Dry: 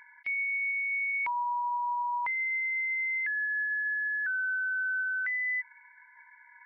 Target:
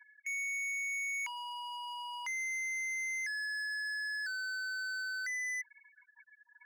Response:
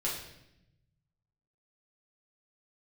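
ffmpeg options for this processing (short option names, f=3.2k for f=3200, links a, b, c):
-af "afftfilt=real='re*gte(hypot(re,im),0.01)':imag='im*gte(hypot(re,im),0.01)':win_size=1024:overlap=0.75,volume=35dB,asoftclip=hard,volume=-35dB,highpass=1.4k"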